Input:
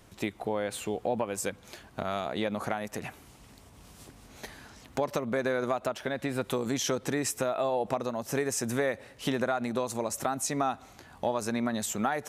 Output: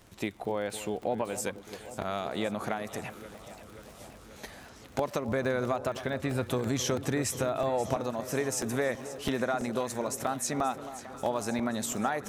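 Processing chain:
0:05.28–0:07.94: parametric band 87 Hz +14.5 dB 0.91 octaves
delay that swaps between a low-pass and a high-pass 266 ms, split 1,200 Hz, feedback 82%, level −13 dB
surface crackle 47 per second −40 dBFS
regular buffer underruns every 0.33 s, samples 64, repeat, from 0:00.70
level −1 dB

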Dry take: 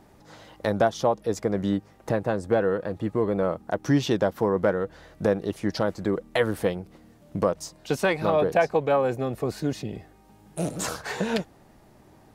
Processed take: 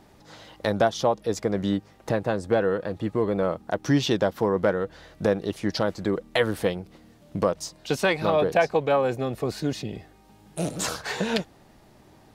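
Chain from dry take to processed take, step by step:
parametric band 3,800 Hz +5 dB 1.5 octaves

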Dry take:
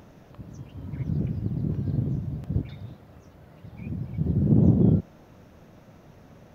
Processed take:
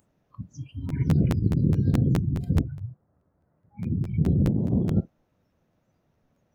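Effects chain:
0:02.59–0:03.99: low-pass filter 1,400 Hz → 1,800 Hz 24 dB per octave
noise reduction from a noise print of the clip's start 25 dB
compressor whose output falls as the input rises −24 dBFS, ratio −1
regular buffer underruns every 0.21 s, samples 512, repeat, from 0:00.88
level +3.5 dB

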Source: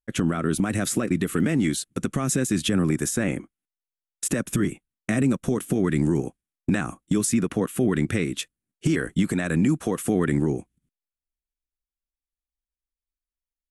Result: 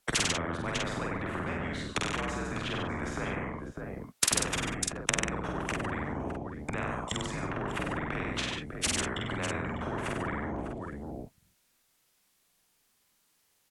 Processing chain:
high-pass filter 160 Hz
treble cut that deepens with the level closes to 570 Hz, closed at −23 dBFS
frequency shifter −75 Hz
in parallel at −2 dB: compressor whose output falls as the input rises −30 dBFS
on the sum: double-tracking delay 47 ms −2.5 dB
on a send: multi-tap delay 96/144/599 ms −6.5/−14/−16.5 dB
on the sum: every bin compressed towards the loudest bin 4 to 1

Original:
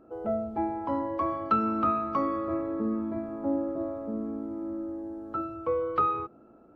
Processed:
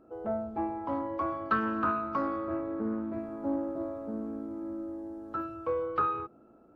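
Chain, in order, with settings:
0:03.13–0:05.86: high-shelf EQ 3,600 Hz +7.5 dB
highs frequency-modulated by the lows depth 0.18 ms
level −3 dB

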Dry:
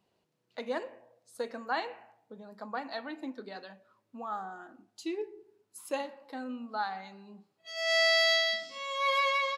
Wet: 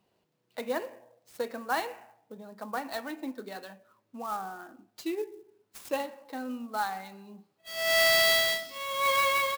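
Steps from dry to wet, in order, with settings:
converter with an unsteady clock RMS 0.022 ms
level +2.5 dB

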